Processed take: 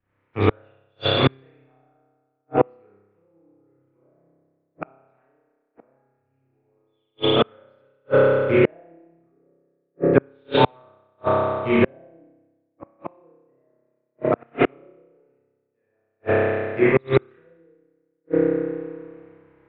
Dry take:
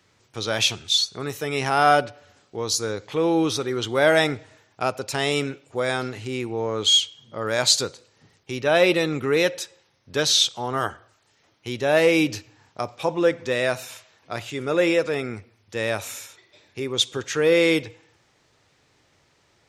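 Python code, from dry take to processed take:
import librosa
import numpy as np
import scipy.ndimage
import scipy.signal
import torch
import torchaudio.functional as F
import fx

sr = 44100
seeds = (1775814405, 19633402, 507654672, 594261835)

y = fx.rattle_buzz(x, sr, strikes_db=-33.0, level_db=-26.0)
y = fx.wow_flutter(y, sr, seeds[0], rate_hz=2.1, depth_cents=120.0)
y = scipy.signal.sosfilt(scipy.signal.butter(4, 2200.0, 'lowpass', fs=sr, output='sos'), y)
y = fx.low_shelf(y, sr, hz=320.0, db=5.0)
y = fx.env_lowpass_down(y, sr, base_hz=520.0, full_db=-17.0)
y = fx.rev_spring(y, sr, rt60_s=2.9, pass_ms=(30,), chirp_ms=50, drr_db=-9.5)
y = fx.gate_flip(y, sr, shuts_db=-11.0, range_db=-38)
y = fx.low_shelf(y, sr, hz=130.0, db=-9.0)
y = fx.band_widen(y, sr, depth_pct=70)
y = y * librosa.db_to_amplitude(5.5)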